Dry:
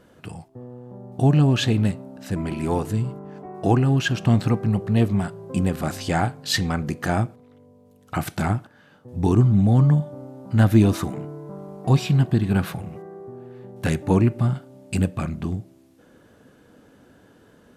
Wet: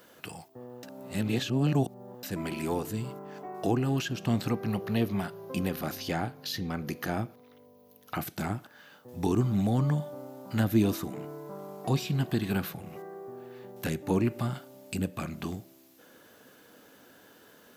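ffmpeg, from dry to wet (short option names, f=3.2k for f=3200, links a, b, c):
-filter_complex "[0:a]asettb=1/sr,asplit=3[a][b][c];[a]atrim=end=4.534[d];[b]atrim=start=4.53:end=8.22,asetpts=PTS-STARTPTS,afade=t=in:d=0.004:c=qsin,afade=t=out:st=3.686:d=0.004:c=qsin,equalizer=f=7.8k:t=o:w=0.24:g=-14.5[e];[c]atrim=start=8.216[f];[d][e]acrossfade=d=0.004:c1=hsin:c2=qsin[g];[g][f]acrossfade=d=0.004:c1=qsin:c2=hsin,asplit=3[h][i][j];[h]atrim=end=0.832[k];[i]atrim=start=0.828:end=2.232,asetpts=PTS-STARTPTS,areverse[l];[j]atrim=start=2.228[m];[k][l]acrossfade=d=0.004:c1=hsin:c2=hsin[n];[n][m]acrossfade=d=0.004:c1=hsin:c2=hsin,aemphasis=mode=production:type=riaa,acrossover=split=440[o][p];[p]acompressor=threshold=-35dB:ratio=4[q];[o][q]amix=inputs=2:normalize=0,equalizer=f=9.5k:t=o:w=0.92:g=-11"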